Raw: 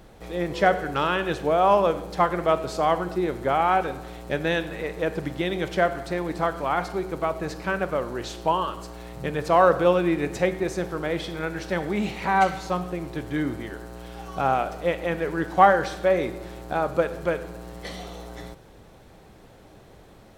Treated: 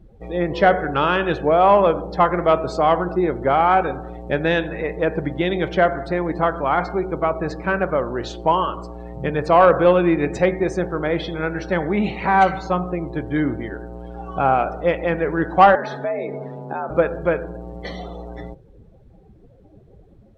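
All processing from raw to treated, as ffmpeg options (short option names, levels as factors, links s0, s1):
-filter_complex "[0:a]asettb=1/sr,asplit=3[s0][s1][s2];[s0]atrim=end=15.754[s3];[s1]atrim=start=15.75:end=16.9,asetpts=PTS-STARTPTS,afade=t=in:d=0.004:c=qsin,afade=t=out:st=1.146:d=0.004:c=qsin,highshelf=f=9400:g=-9.5,acompressor=threshold=0.0355:ratio=3:attack=3.2:release=140:knee=1:detection=peak,afreqshift=80[s4];[s2]atrim=start=16.896[s5];[s3][s4]acrossfade=d=0.004:c1=hsin:c2=qsin[s6];[s6][s5]acrossfade=d=0.004:c1=qsin:c2=hsin,afftdn=nr=22:nf=-41,highshelf=f=5200:g=-6,acontrast=47"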